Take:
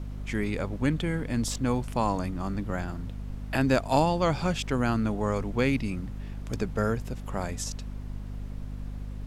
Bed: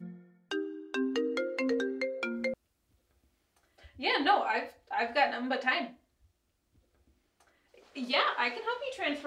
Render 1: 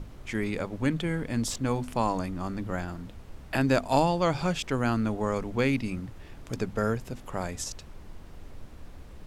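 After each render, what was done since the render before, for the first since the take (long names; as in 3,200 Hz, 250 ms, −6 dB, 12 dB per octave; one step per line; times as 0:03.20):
mains-hum notches 50/100/150/200/250 Hz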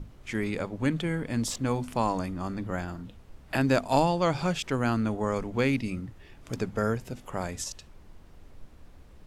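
noise reduction from a noise print 6 dB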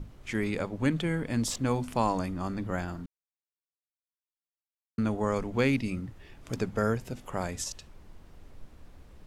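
0:03.06–0:04.98: silence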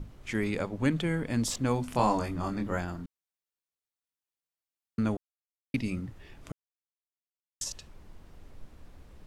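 0:01.92–0:02.78: double-tracking delay 24 ms −3.5 dB
0:05.17–0:05.74: silence
0:06.52–0:07.61: silence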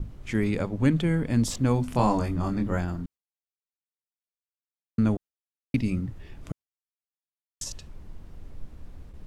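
noise gate with hold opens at −44 dBFS
low-shelf EQ 310 Hz +8.5 dB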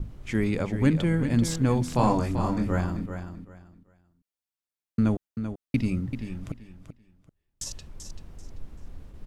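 repeating echo 387 ms, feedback 23%, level −9 dB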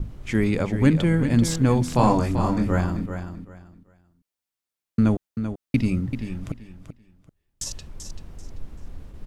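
level +4 dB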